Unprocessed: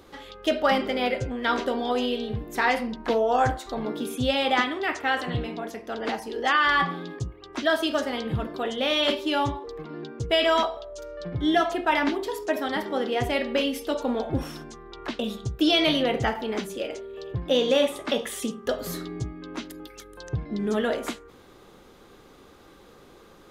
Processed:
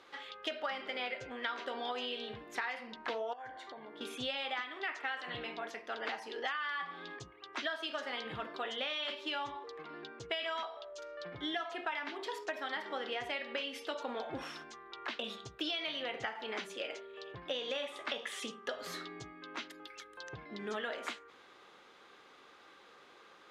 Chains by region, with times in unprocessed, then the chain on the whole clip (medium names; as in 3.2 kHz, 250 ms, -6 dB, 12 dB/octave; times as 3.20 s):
3.33–4.01 s: comb of notches 1.3 kHz + compression, threshold -36 dBFS + tone controls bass +3 dB, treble -9 dB
whole clip: low-pass 2.1 kHz 12 dB/octave; differentiator; compression 12:1, threshold -47 dBFS; trim +13 dB